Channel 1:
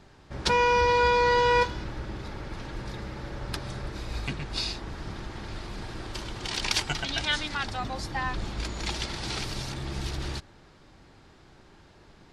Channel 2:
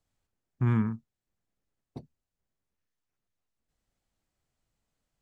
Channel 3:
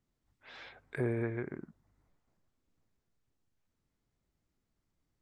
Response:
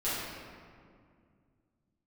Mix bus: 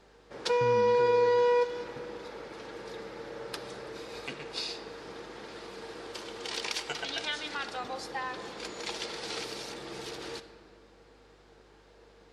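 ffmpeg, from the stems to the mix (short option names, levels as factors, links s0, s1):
-filter_complex "[0:a]highpass=300,acompressor=threshold=0.0501:ratio=6,aeval=exprs='val(0)+0.000794*(sin(2*PI*50*n/s)+sin(2*PI*2*50*n/s)/2+sin(2*PI*3*50*n/s)/3+sin(2*PI*4*50*n/s)/4+sin(2*PI*5*50*n/s)/5)':c=same,volume=0.596,asplit=2[s0][s1];[s1]volume=0.133[s2];[1:a]acompressor=threshold=0.0447:ratio=6,volume=0.398[s3];[2:a]volume=0.299[s4];[3:a]atrim=start_sample=2205[s5];[s2][s5]afir=irnorm=-1:irlink=0[s6];[s0][s3][s4][s6]amix=inputs=4:normalize=0,equalizer=f=470:t=o:w=0.2:g=15"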